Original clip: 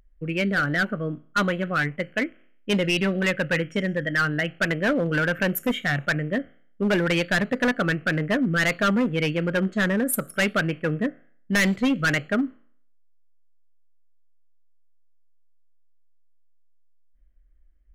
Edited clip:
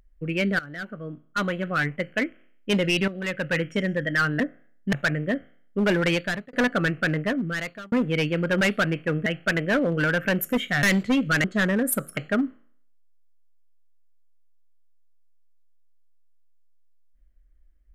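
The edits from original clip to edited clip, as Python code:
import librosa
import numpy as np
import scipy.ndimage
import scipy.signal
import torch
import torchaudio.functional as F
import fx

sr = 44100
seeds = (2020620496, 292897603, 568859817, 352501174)

y = fx.edit(x, sr, fx.fade_in_from(start_s=0.59, length_s=1.31, floor_db=-18.0),
    fx.fade_in_from(start_s=3.08, length_s=0.56, floor_db=-12.5),
    fx.swap(start_s=4.4, length_s=1.57, other_s=11.03, other_length_s=0.53),
    fx.fade_out_span(start_s=7.16, length_s=0.41),
    fx.fade_out_span(start_s=8.14, length_s=0.82),
    fx.move(start_s=9.65, length_s=0.73, to_s=12.17), tone=tone)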